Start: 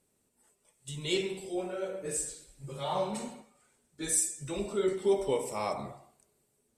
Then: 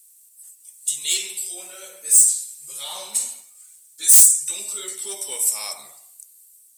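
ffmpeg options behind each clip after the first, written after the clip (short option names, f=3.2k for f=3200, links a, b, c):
-af "crystalizer=i=3:c=0,aeval=exprs='0.708*sin(PI/2*3.98*val(0)/0.708)':c=same,aderivative,volume=-4.5dB"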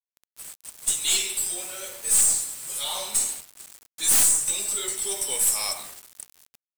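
-af "aeval=exprs='(tanh(10*val(0)+0.25)-tanh(0.25))/10':c=same,acrusher=bits=6:mix=0:aa=0.000001,volume=3.5dB"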